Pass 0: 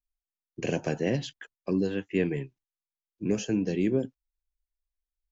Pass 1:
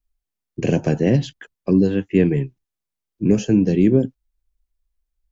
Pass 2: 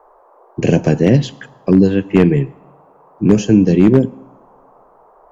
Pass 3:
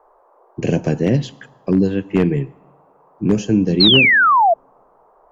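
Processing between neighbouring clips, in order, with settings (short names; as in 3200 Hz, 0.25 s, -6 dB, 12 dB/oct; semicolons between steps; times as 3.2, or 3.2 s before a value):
low shelf 380 Hz +11 dB; gain +4 dB
band noise 390–1100 Hz -54 dBFS; two-slope reverb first 0.89 s, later 3 s, from -24 dB, DRR 19 dB; wavefolder -6.5 dBFS; gain +5.5 dB
painted sound fall, 3.8–4.54, 640–4400 Hz -7 dBFS; gain -5 dB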